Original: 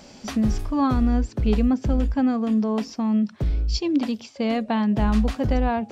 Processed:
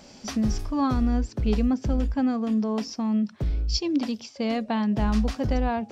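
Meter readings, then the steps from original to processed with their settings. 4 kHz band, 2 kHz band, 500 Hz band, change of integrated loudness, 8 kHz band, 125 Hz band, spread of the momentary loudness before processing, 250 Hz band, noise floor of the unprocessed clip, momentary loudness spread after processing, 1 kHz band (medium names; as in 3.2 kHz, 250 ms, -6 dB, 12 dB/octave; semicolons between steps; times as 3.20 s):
+0.5 dB, -3.0 dB, -3.0 dB, -3.0 dB, no reading, -3.0 dB, 5 LU, -3.0 dB, -47 dBFS, 5 LU, -3.0 dB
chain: dynamic bell 5.4 kHz, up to +7 dB, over -55 dBFS, Q 2.4; trim -3 dB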